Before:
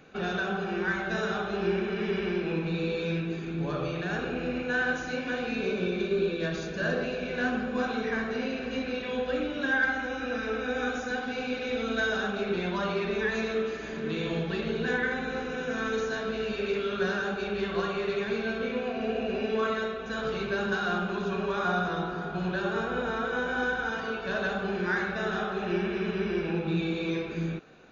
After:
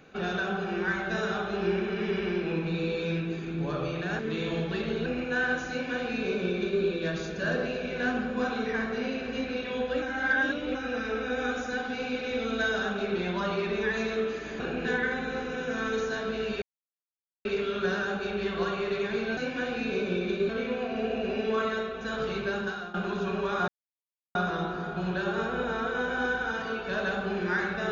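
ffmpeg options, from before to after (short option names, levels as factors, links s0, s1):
-filter_complex "[0:a]asplit=12[s0][s1][s2][s3][s4][s5][s6][s7][s8][s9][s10][s11];[s0]atrim=end=4.192[s12];[s1]atrim=start=13.978:end=14.852[s13];[s2]atrim=start=4.438:end=9.402[s14];[s3]atrim=start=9.398:end=10.132,asetpts=PTS-STARTPTS,areverse[s15];[s4]atrim=start=10.128:end=13.982[s16];[s5]atrim=start=4.188:end=4.442[s17];[s6]atrim=start=14.848:end=16.62,asetpts=PTS-STARTPTS,afade=t=out:st=1.768:d=0.004:c=hsin,apad=pad_dur=0.83[s18];[s7]atrim=start=16.62:end=18.542,asetpts=PTS-STARTPTS,afade=t=in:d=0.004:c=hsin[s19];[s8]atrim=start=5.078:end=6.202[s20];[s9]atrim=start=18.538:end=20.99,asetpts=PTS-STARTPTS,afade=t=out:st=1.822:d=0.63:c=qsin:silence=0.11885[s21];[s10]atrim=start=20.99:end=21.73,asetpts=PTS-STARTPTS,afade=t=in:d=0.004:c=hsin:silence=0.11885,afade=t=out:st=0.736:d=0.004:c=hsin,apad=pad_dur=0.67[s22];[s11]atrim=start=21.73,asetpts=PTS-STARTPTS,afade=t=in:d=0.004:c=hsin[s23];[s12][s13]acrossfade=d=0.004:c1=hsin:c2=hsin[s24];[s24][s14]acrossfade=d=0.004:c1=hsin:c2=hsin[s25];[s25][s15]acrossfade=d=0.004:c1=hsin:c2=hsin[s26];[s26][s16]acrossfade=d=0.004:c1=hsin:c2=hsin[s27];[s27][s17]acrossfade=d=0.004:c1=hsin:c2=hsin[s28];[s18][s19]concat=n=2:v=0:a=1[s29];[s28][s29]acrossfade=d=0.004:c1=hsin:c2=hsin[s30];[s30][s20]acrossfade=d=0.004:c1=hsin:c2=hsin[s31];[s21][s22][s23]concat=n=3:v=0:a=1[s32];[s31][s32]acrossfade=d=0.004:c1=hsin:c2=hsin"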